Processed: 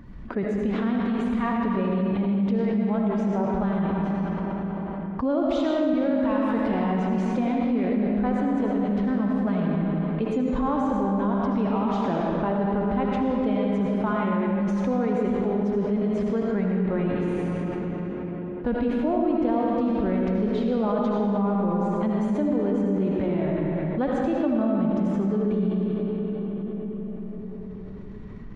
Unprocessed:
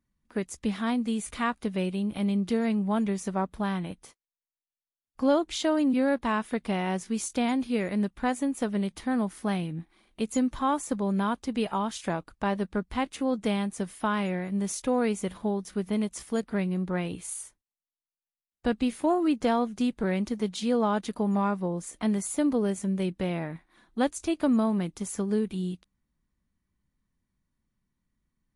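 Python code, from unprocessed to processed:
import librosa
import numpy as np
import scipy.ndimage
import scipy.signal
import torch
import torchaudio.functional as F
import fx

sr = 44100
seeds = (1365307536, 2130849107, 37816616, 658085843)

y = fx.spec_quant(x, sr, step_db=15)
y = fx.high_shelf(y, sr, hz=4100.0, db=11.0, at=(5.43, 6.73))
y = fx.transient(y, sr, attack_db=2, sustain_db=7)
y = fx.spacing_loss(y, sr, db_at_10k=40)
y = fx.rev_freeverb(y, sr, rt60_s=2.9, hf_ratio=0.7, predelay_ms=40, drr_db=-2.0)
y = fx.env_flatten(y, sr, amount_pct=70)
y = y * librosa.db_to_amplitude(-4.0)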